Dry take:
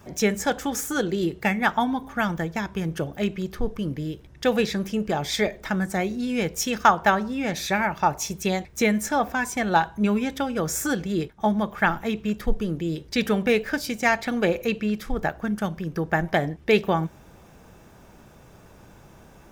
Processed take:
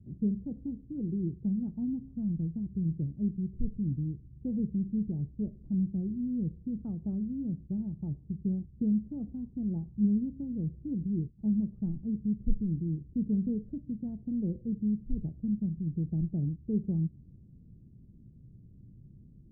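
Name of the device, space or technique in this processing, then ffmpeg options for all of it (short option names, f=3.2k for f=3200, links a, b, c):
the neighbour's flat through the wall: -af "lowpass=f=260:w=0.5412,lowpass=f=260:w=1.3066,equalizer=f=120:t=o:w=0.84:g=6,volume=-4dB"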